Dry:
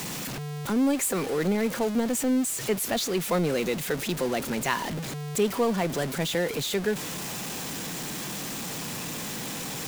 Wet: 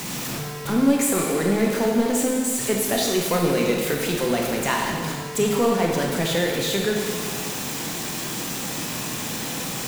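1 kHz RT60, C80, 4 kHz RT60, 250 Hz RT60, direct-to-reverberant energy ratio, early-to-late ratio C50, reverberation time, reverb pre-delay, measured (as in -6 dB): 1.7 s, 3.5 dB, 1.6 s, 1.7 s, -0.5 dB, 1.5 dB, 1.7 s, 13 ms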